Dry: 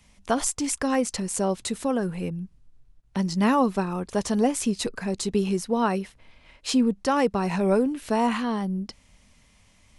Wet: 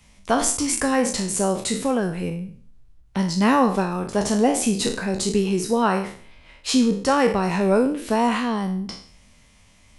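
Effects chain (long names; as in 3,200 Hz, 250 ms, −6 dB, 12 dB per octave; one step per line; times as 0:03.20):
peak hold with a decay on every bin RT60 0.50 s
level +2.5 dB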